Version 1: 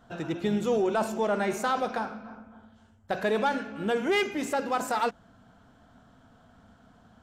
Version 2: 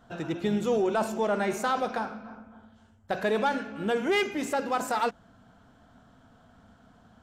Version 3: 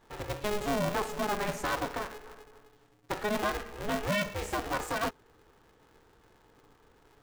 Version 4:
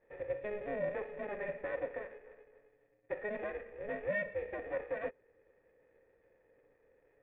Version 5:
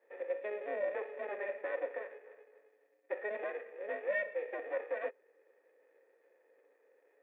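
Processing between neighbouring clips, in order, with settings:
no processing that can be heard
ring modulator with a square carrier 210 Hz; level −4.5 dB
formant resonators in series e; level +4.5 dB
high-pass filter 350 Hz 24 dB per octave; level +1 dB

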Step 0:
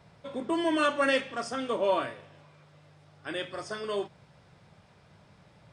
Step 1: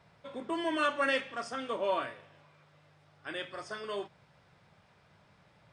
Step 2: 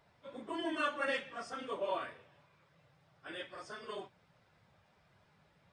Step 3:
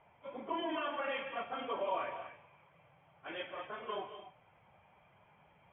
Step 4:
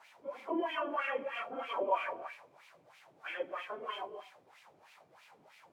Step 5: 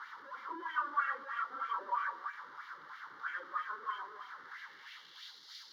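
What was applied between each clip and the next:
parametric band 1,700 Hz +5.5 dB 2.8 octaves; level −7.5 dB
random phases in long frames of 50 ms; level −5.5 dB
brickwall limiter −31.5 dBFS, peak gain reduction 9.5 dB; Chebyshev low-pass with heavy ripple 3,300 Hz, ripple 9 dB; reverb whose tail is shaped and stops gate 270 ms rising, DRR 8 dB; level +8 dB
in parallel at −10 dB: bit-depth reduction 8 bits, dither triangular; on the sum: LFO wah 3.1 Hz 300–2,600 Hz, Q 2.3; level +7 dB
converter with a step at zero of −40.5 dBFS; phaser with its sweep stopped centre 2,500 Hz, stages 6; band-pass filter sweep 1,300 Hz → 4,400 Hz, 0:04.34–0:05.41; level +5.5 dB

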